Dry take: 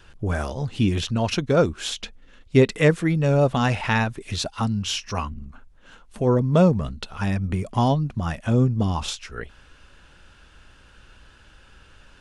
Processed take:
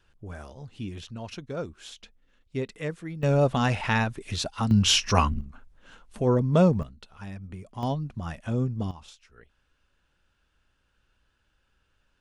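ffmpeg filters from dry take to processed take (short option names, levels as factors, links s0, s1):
-af "asetnsamples=n=441:p=0,asendcmd='3.23 volume volume -3dB;4.71 volume volume 6dB;5.41 volume volume -3dB;6.83 volume volume -15dB;7.83 volume volume -8dB;8.91 volume volume -20dB',volume=0.178"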